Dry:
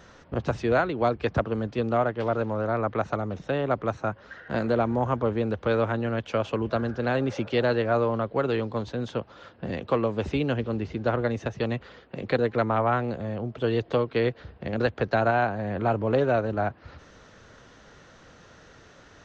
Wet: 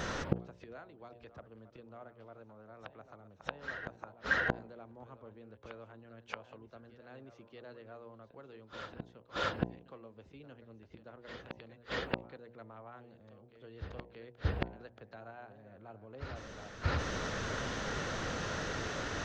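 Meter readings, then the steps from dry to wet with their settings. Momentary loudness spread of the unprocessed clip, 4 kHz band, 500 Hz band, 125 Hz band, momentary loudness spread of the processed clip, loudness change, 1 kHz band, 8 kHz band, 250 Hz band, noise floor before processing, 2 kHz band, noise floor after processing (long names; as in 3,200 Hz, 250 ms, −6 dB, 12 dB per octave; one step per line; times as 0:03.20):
8 LU, −5.0 dB, −19.0 dB, −13.5 dB, 19 LU, −12.5 dB, −15.0 dB, can't be measured, −16.5 dB, −53 dBFS, −6.5 dB, −61 dBFS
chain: gate with flip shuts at −29 dBFS, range −41 dB
hum removal 59.56 Hz, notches 17
backwards echo 629 ms −11.5 dB
level +14 dB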